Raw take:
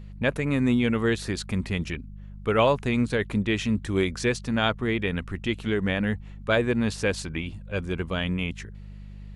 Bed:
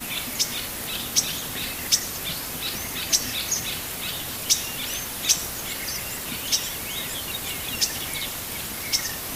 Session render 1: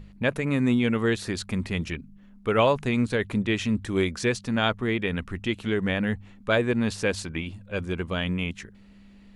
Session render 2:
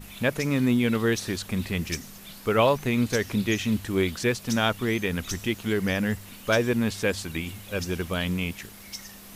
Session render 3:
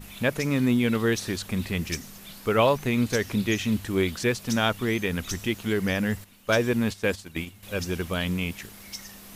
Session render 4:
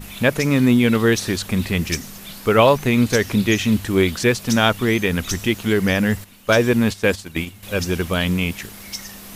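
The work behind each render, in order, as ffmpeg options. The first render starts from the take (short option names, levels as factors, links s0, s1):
-af "bandreject=f=50:t=h:w=4,bandreject=f=100:t=h:w=4,bandreject=f=150:t=h:w=4"
-filter_complex "[1:a]volume=0.178[s0];[0:a][s0]amix=inputs=2:normalize=0"
-filter_complex "[0:a]asettb=1/sr,asplit=3[s0][s1][s2];[s0]atrim=end=6.244[s3];[s1]atrim=start=6.24:end=7.63,asetpts=PTS-STARTPTS,afade=t=in:d=0.004:c=qsin,afade=t=out:st=1.386:d=0.004:c=qsin,agate=range=0.282:threshold=0.0224:ratio=16:release=100:detection=peak[s4];[s2]atrim=start=7.626[s5];[s3][s4]acrossfade=d=0.004:c1=hsin:c2=qsin[s6];[s6][s5]acrossfade=d=0.004:c1=qsin:c2=hsin"
-af "volume=2.37,alimiter=limit=0.794:level=0:latency=1"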